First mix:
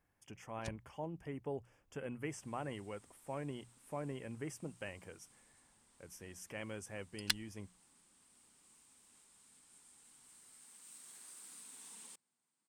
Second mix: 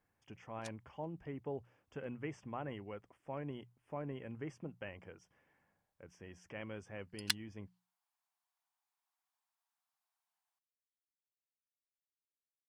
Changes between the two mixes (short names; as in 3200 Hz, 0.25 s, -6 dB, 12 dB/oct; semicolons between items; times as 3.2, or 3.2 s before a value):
speech: add air absorption 170 m; first sound: add brick-wall FIR high-pass 650 Hz; second sound: muted